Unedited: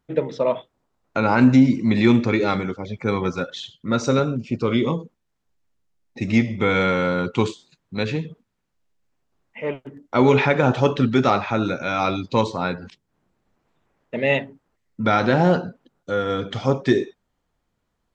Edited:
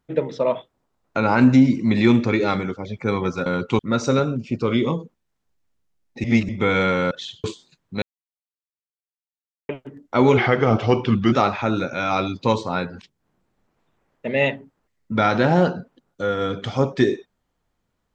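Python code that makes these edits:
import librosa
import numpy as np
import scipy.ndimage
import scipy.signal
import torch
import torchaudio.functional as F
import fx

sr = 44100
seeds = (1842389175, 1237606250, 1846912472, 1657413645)

y = fx.edit(x, sr, fx.swap(start_s=3.46, length_s=0.33, other_s=7.11, other_length_s=0.33),
    fx.reverse_span(start_s=6.24, length_s=0.25),
    fx.silence(start_s=8.02, length_s=1.67),
    fx.speed_span(start_s=10.37, length_s=0.84, speed=0.88), tone=tone)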